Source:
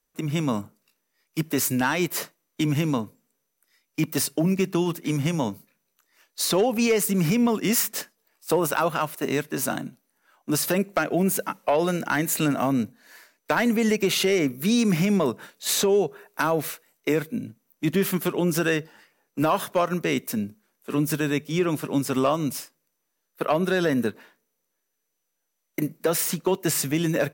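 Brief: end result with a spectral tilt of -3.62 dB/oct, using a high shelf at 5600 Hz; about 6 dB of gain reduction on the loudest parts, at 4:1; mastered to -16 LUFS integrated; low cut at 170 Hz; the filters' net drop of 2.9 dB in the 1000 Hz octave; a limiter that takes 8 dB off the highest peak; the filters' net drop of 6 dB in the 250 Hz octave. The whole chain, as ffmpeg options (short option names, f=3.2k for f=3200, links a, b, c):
-af "highpass=170,equalizer=f=250:t=o:g=-6.5,equalizer=f=1k:t=o:g=-3.5,highshelf=f=5.6k:g=3,acompressor=threshold=-26dB:ratio=4,volume=16.5dB,alimiter=limit=-5dB:level=0:latency=1"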